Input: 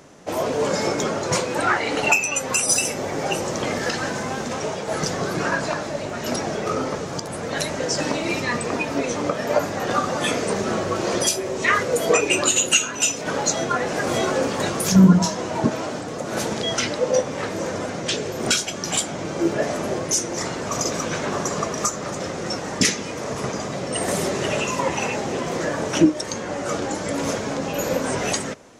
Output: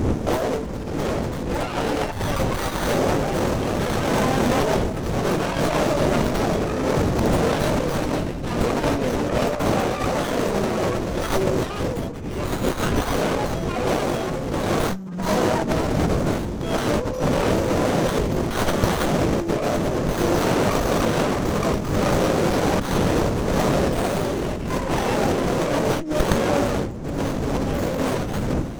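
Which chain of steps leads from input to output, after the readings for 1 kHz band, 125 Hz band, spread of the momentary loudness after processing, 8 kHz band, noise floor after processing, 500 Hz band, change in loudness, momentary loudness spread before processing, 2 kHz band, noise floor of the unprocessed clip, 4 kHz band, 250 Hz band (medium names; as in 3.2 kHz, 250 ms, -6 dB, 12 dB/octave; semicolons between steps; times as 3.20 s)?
+1.5 dB, +4.0 dB, 5 LU, -10.5 dB, -28 dBFS, +2.0 dB, 0.0 dB, 9 LU, -3.5 dB, -31 dBFS, -4.0 dB, +1.5 dB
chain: wind noise 280 Hz -25 dBFS; in parallel at -1 dB: peak limiter -13.5 dBFS, peak gain reduction 12.5 dB; on the sum: compressor with a negative ratio -22 dBFS, ratio -1; treble shelf 5.9 kHz +7 dB; sliding maximum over 17 samples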